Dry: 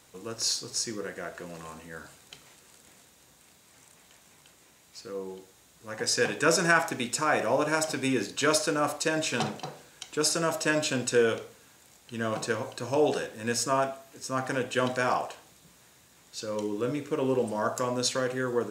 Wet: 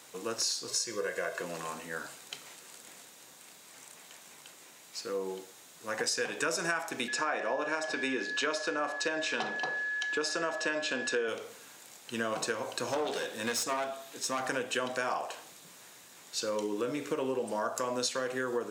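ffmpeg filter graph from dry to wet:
ffmpeg -i in.wav -filter_complex "[0:a]asettb=1/sr,asplit=3[link_01][link_02][link_03];[link_01]atrim=end=0.684[link_04];[link_02]atrim=start=0.68:end=1.42,asetpts=PTS-STARTPTS,afade=type=in:duration=0.004:curve=qsin,afade=type=out:start_time=0.736:duration=0.004:curve=qsin,bandreject=frequency=910:width=18,aecho=1:1:1.9:0.7,atrim=end_sample=32634[link_05];[link_03]atrim=start=1.416[link_06];[link_04][link_05]acrossfade=duration=0.004:curve1=hsin:curve2=qsin[link_07];[link_07][link_06]acrossfade=duration=0.004:curve1=qsin:curve2=hsin,asettb=1/sr,asplit=3[link_08][link_09][link_10];[link_08]atrim=end=7.084[link_11];[link_09]atrim=start=7.08:end=11.28,asetpts=PTS-STARTPTS,afade=type=in:duration=0.004:curve=qsin,afade=type=out:start_time=4.196:duration=0.004:curve=qsin,highpass=210,lowpass=4800,aeval=exprs='val(0)+0.0158*sin(2*PI*1700*n/s)':channel_layout=same[link_12];[link_10]atrim=start=11.276[link_13];[link_11][link_12]acrossfade=duration=0.004:curve1=hsin:curve2=qsin[link_14];[link_14][link_13]acrossfade=duration=0.004:curve1=qsin:curve2=hsin,asettb=1/sr,asplit=3[link_15][link_16][link_17];[link_15]atrim=end=12.874[link_18];[link_16]atrim=start=12.87:end=14.44,asetpts=PTS-STARTPTS,afade=type=in:duration=0.004:curve=qsin,afade=type=out:start_time=1.566:duration=0.004:curve=qsin,equalizer=frequency=3600:width=4.1:gain=7,aeval=exprs='clip(val(0),-1,0.0282)':channel_layout=same[link_19];[link_17]atrim=start=14.436[link_20];[link_18][link_19]acrossfade=duration=0.004:curve1=hsin:curve2=qsin[link_21];[link_21][link_20]acrossfade=duration=0.004:curve1=qsin:curve2=hsin,highpass=140,lowshelf=frequency=240:gain=-9.5,acompressor=threshold=-35dB:ratio=6,volume=5.5dB" out.wav

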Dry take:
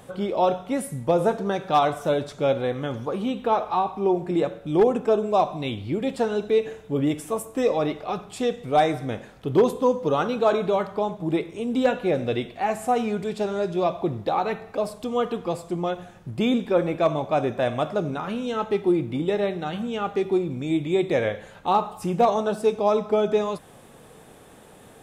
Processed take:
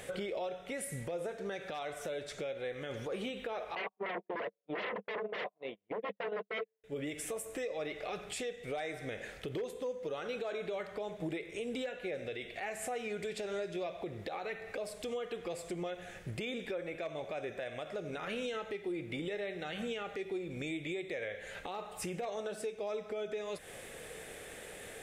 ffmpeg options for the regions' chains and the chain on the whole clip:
ffmpeg -i in.wav -filter_complex "[0:a]asettb=1/sr,asplit=3[link_01][link_02][link_03];[link_01]atrim=end=3.754[link_04];[link_02]atrim=start=3.75:end=6.84,asetpts=PTS-STARTPTS,afade=type=in:duration=0.004:curve=qsin,afade=type=out:start_time=3.086:duration=0.004:curve=qsin,agate=range=-57dB:threshold=-26dB:ratio=16:release=100:detection=peak,aeval=exprs='0.299*sin(PI/2*6.31*val(0)/0.299)':channel_layout=same,highpass=200,equalizer=frequency=200:width_type=q:width=4:gain=7,equalizer=frequency=460:width_type=q:width=4:gain=8,equalizer=frequency=680:width_type=q:width=4:gain=7,equalizer=frequency=1000:width_type=q:width=4:gain=10,equalizer=frequency=1600:width_type=q:width=4:gain=-5,equalizer=frequency=2400:width_type=q:width=4:gain=-8,lowpass=frequency=2700:width=0.5412,lowpass=frequency=2700:width=1.3066[link_05];[link_03]atrim=start=6.836[link_06];[link_04][link_05]acrossfade=duration=0.004:curve1=hsin:curve2=qsin[link_07];[link_07][link_06]acrossfade=duration=0.004:curve1=qsin:curve2=hsin,equalizer=frequency=125:width_type=o:width=1:gain=-7,equalizer=frequency=250:width_type=o:width=1:gain=-8,equalizer=frequency=500:width_type=o:width=1:gain=5,equalizer=frequency=1000:width_type=o:width=1:gain=-11,equalizer=frequency=2000:width_type=o:width=1:gain=11,equalizer=frequency=8000:width_type=o:width=1:gain=4,acompressor=threshold=-34dB:ratio=12,alimiter=level_in=7dB:limit=-24dB:level=0:latency=1:release=48,volume=-7dB,volume=1dB" out.wav

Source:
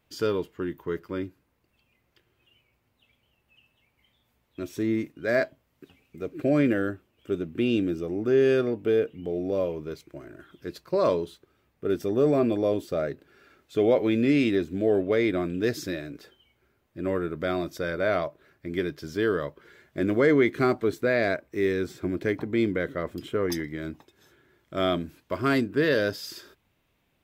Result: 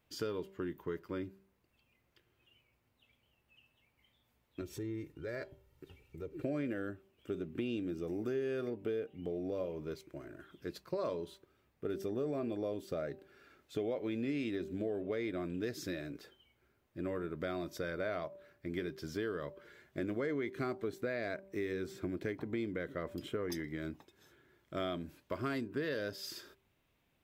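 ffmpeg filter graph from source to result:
ffmpeg -i in.wav -filter_complex "[0:a]asettb=1/sr,asplit=3[link_01][link_02][link_03];[link_01]atrim=end=4.614[link_04];[link_02]atrim=start=4.61:end=6.44,asetpts=PTS-STARTPTS,afade=type=in:duration=0.004:curve=qsin,afade=type=out:start_time=1.826:duration=0.004:curve=qsin,lowshelf=frequency=190:gain=10.5,aecho=1:1:2.2:0.63,atrim=end_sample=80703,acompressor=threshold=-41dB:ratio=2:attack=3.2:release=140:knee=1:detection=peak[link_05];[link_03]atrim=start=6.436[link_06];[link_04][link_05]acrossfade=duration=0.004:curve1=hsin:curve2=qsin[link_07];[link_07][link_06]acrossfade=duration=0.004:curve1=qsin:curve2=hsin,asettb=1/sr,asplit=3[link_08][link_09][link_10];[link_08]atrim=end=8.074[link_11];[link_09]atrim=start=8.07:end=8.7,asetpts=PTS-STARTPTS,afade=type=in:duration=0.004:curve=qsin,afade=type=out:start_time=0.626:duration=0.004:curve=qsin,acrossover=split=2500[link_12][link_13];[link_13]acompressor=threshold=-47dB:ratio=4:attack=1:release=60[link_14];[link_12][link_14]amix=inputs=2:normalize=0,highshelf=frequency=4600:gain=11[link_15];[link_10]atrim=start=8.696[link_16];[link_11][link_15]acrossfade=duration=0.004:curve1=hsin:curve2=qsin[link_17];[link_17][link_16]acrossfade=duration=0.004:curve1=qsin:curve2=hsin,bandreject=frequency=194:width_type=h:width=4,bandreject=frequency=388:width_type=h:width=4,bandreject=frequency=582:width_type=h:width=4,bandreject=frequency=776:width_type=h:width=4,bandreject=frequency=970:width_type=h:width=4,acompressor=threshold=-30dB:ratio=4,volume=-5dB" out.wav

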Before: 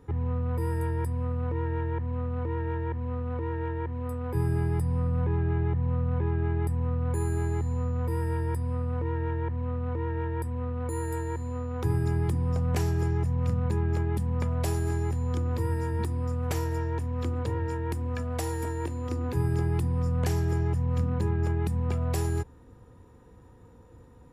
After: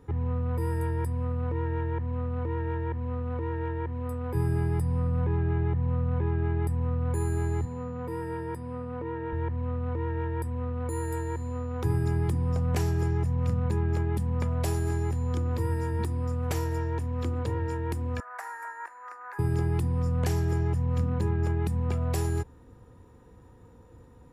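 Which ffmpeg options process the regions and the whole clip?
ffmpeg -i in.wav -filter_complex "[0:a]asettb=1/sr,asplit=3[link_01][link_02][link_03];[link_01]atrim=end=7.654[link_04];[link_02]atrim=start=7.65:end=9.33,asetpts=PTS-STARTPTS,afade=type=in:duration=0.004:curve=qsin,afade=type=out:start_time=1.676:duration=0.004:curve=qsin,highpass=160,highshelf=frequency=4100:gain=-7[link_05];[link_03]atrim=start=9.326[link_06];[link_04][link_05]acrossfade=duration=0.004:curve1=hsin:curve2=qsin[link_07];[link_07][link_06]acrossfade=duration=0.004:curve1=qsin:curve2=hsin,asettb=1/sr,asplit=3[link_08][link_09][link_10];[link_08]atrim=end=18.204[link_11];[link_09]atrim=start=18.2:end=19.39,asetpts=PTS-STARTPTS,afade=type=in:duration=0.004:curve=qsin,afade=type=out:start_time=1.186:duration=0.004:curve=qsin,highpass=frequency=840:width=0.5412,highpass=frequency=840:width=1.3066,highshelf=frequency=2300:width_type=q:width=3:gain=-12[link_12];[link_10]atrim=start=19.386[link_13];[link_11][link_12]acrossfade=duration=0.004:curve1=hsin:curve2=qsin[link_14];[link_14][link_13]acrossfade=duration=0.004:curve1=qsin:curve2=hsin" out.wav

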